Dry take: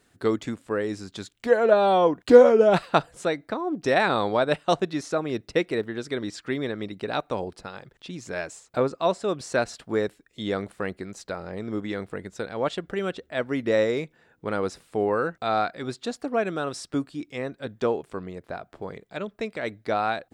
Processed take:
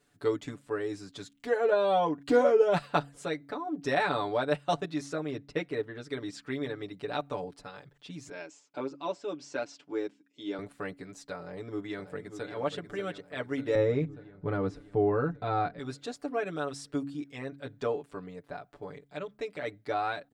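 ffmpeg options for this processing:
-filter_complex "[0:a]asettb=1/sr,asplit=3[s0][s1][s2];[s0]atrim=end=5.304[s3];[s1]atrim=start=5.3:end=6.1,asetpts=PTS-STARTPTS,afade=t=in:d=0.004:c=qsin,afade=t=out:st=0.796:d=0.004:c=qsin,highshelf=f=4200:g=-7.5[s4];[s2]atrim=start=6.096[s5];[s3][s4]acrossfade=d=0.004:c1=hsin:c2=qsin[s6];[s6][s5]acrossfade=d=0.004:c1=qsin:c2=hsin,asettb=1/sr,asplit=3[s7][s8][s9];[s7]atrim=end=8.294[s10];[s8]atrim=start=8.29:end=10.59,asetpts=PTS-STARTPTS,afade=t=in:d=0.004:c=qsin,afade=t=out:st=2.296:d=0.004:c=qsin,highpass=290,equalizer=f=320:t=q:w=4:g=6,equalizer=f=460:t=q:w=4:g=-6,equalizer=f=700:t=q:w=4:g=-7,equalizer=f=1200:t=q:w=4:g=-7,equalizer=f=1800:t=q:w=4:g=-8,equalizer=f=4000:t=q:w=4:g=-7,lowpass=f=6300:w=0.5412,lowpass=f=6300:w=1.3066[s11];[s9]atrim=start=10.586[s12];[s10][s11]acrossfade=d=0.004:c1=hsin:c2=qsin[s13];[s13][s12]acrossfade=d=0.004:c1=qsin:c2=hsin,asplit=2[s14][s15];[s15]afade=t=in:st=11.38:d=0.01,afade=t=out:st=12.51:d=0.01,aecho=0:1:590|1180|1770|2360|2950|3540|4130|4720|5310:0.354813|0.230629|0.149909|0.0974406|0.0633364|0.0411687|0.0267596|0.0173938|0.0113059[s16];[s14][s16]amix=inputs=2:normalize=0,asettb=1/sr,asplit=3[s17][s18][s19];[s17]atrim=end=13.754[s20];[s18]atrim=start=13.75:end=15.79,asetpts=PTS-STARTPTS,afade=t=in:d=0.004:c=qsin,afade=t=out:st=2.036:d=0.004:c=qsin,aemphasis=mode=reproduction:type=riaa[s21];[s19]atrim=start=15.786[s22];[s20][s21]acrossfade=d=0.004:c1=hsin:c2=qsin[s23];[s23][s22]acrossfade=d=0.004:c1=qsin:c2=hsin,bandreject=f=70.12:t=h:w=4,bandreject=f=140.24:t=h:w=4,bandreject=f=210.36:t=h:w=4,bandreject=f=280.48:t=h:w=4,deesser=0.55,aecho=1:1:6.9:0.95,volume=0.355"

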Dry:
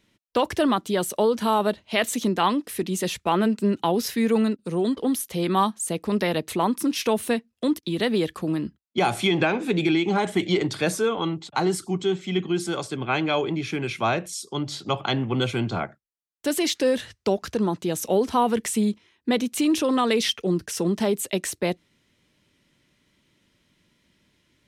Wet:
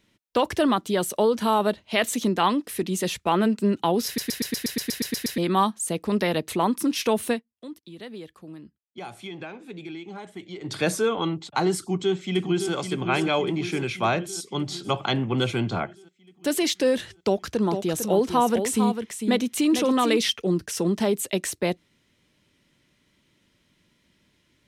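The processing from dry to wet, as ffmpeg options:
-filter_complex "[0:a]asplit=2[s0][s1];[s1]afade=t=in:st=11.79:d=0.01,afade=t=out:st=12.72:d=0.01,aecho=0:1:560|1120|1680|2240|2800|3360|3920|4480|5040:0.446684|0.290344|0.188724|0.12267|0.0797358|0.0518283|0.0336884|0.0218974|0.0142333[s2];[s0][s2]amix=inputs=2:normalize=0,asplit=3[s3][s4][s5];[s3]afade=t=out:st=17.62:d=0.02[s6];[s4]aecho=1:1:451:0.422,afade=t=in:st=17.62:d=0.02,afade=t=out:st=20.16:d=0.02[s7];[s5]afade=t=in:st=20.16:d=0.02[s8];[s6][s7][s8]amix=inputs=3:normalize=0,asplit=14[s9][s10][s11][s12][s13][s14][s15][s16][s17][s18][s19][s20][s21][s22];[s9]atrim=end=4.182[s23];[s10]atrim=start=4.058:end=4.182[s24];[s11]atrim=start=4.058:end=4.182[s25];[s12]atrim=start=4.058:end=4.182[s26];[s13]atrim=start=4.058:end=4.182[s27];[s14]atrim=start=4.058:end=4.182[s28];[s15]atrim=start=4.058:end=4.182[s29];[s16]atrim=start=4.058:end=4.182[s30];[s17]atrim=start=4.058:end=4.182[s31];[s18]atrim=start=4.058:end=4.182[s32];[s19]atrim=start=4.058:end=4.182[s33];[s20]atrim=start=5.378:end=7.43,asetpts=PTS-STARTPTS,afade=t=out:st=1.922:d=0.13:silence=0.158489[s34];[s21]atrim=start=7.43:end=10.62,asetpts=PTS-STARTPTS,volume=0.158[s35];[s22]atrim=start=10.62,asetpts=PTS-STARTPTS,afade=t=in:d=0.13:silence=0.158489[s36];[s23][s24]acrossfade=d=0.004:c1=hsin:c2=hsin[s37];[s37][s25]acrossfade=d=0.004:c1=hsin:c2=hsin[s38];[s38][s26]acrossfade=d=0.004:c1=hsin:c2=hsin[s39];[s39][s27]acrossfade=d=0.004:c1=hsin:c2=hsin[s40];[s40][s28]acrossfade=d=0.004:c1=hsin:c2=hsin[s41];[s41][s29]acrossfade=d=0.004:c1=hsin:c2=hsin[s42];[s42][s30]acrossfade=d=0.004:c1=hsin:c2=hsin[s43];[s43][s31]acrossfade=d=0.004:c1=hsin:c2=hsin[s44];[s44][s32]acrossfade=d=0.004:c1=hsin:c2=hsin[s45];[s45][s33]acrossfade=d=0.004:c1=hsin:c2=hsin[s46];[s34][s35][s36]concat=n=3:v=0:a=1[s47];[s46][s47]acrossfade=d=0.004:c1=hsin:c2=hsin"

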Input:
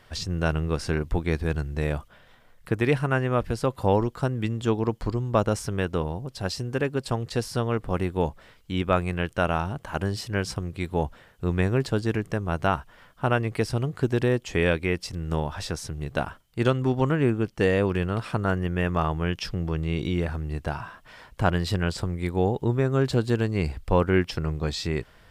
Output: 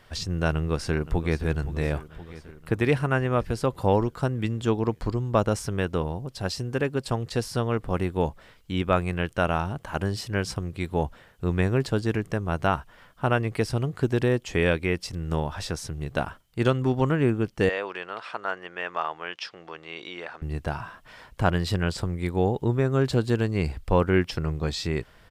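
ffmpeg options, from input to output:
-filter_complex "[0:a]asplit=2[s0][s1];[s1]afade=t=in:st=0.52:d=0.01,afade=t=out:st=1.46:d=0.01,aecho=0:1:520|1040|1560|2080|2600|3120|3640:0.199526|0.129692|0.0842998|0.0547949|0.0356167|0.0231508|0.015048[s2];[s0][s2]amix=inputs=2:normalize=0,asettb=1/sr,asplit=3[s3][s4][s5];[s3]atrim=end=17.694[s6];[s4]atrim=start=17.69:end=20.42,asetpts=PTS-STARTPTS,afade=t=in:d=0.004:c=qsin,afade=t=out:st=2.726:d=0.004:c=qsin,highpass=700,lowpass=4700[s7];[s5]atrim=start=20.416[s8];[s6][s7]acrossfade=d=0.004:c1=hsin:c2=qsin[s9];[s9][s8]acrossfade=d=0.004:c1=qsin:c2=hsin"

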